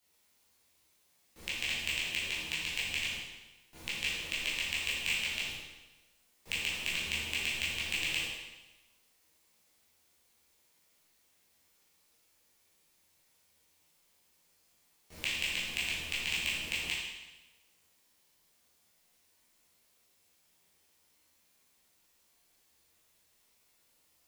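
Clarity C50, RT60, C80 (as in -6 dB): 0.0 dB, 1.1 s, 3.0 dB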